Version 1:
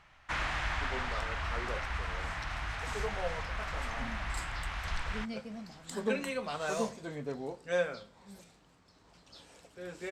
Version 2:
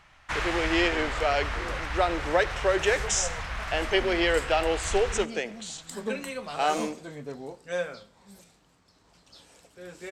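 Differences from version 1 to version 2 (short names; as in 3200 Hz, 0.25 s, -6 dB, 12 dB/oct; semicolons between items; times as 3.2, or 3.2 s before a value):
speech: unmuted; first sound +3.5 dB; master: add high shelf 6600 Hz +7 dB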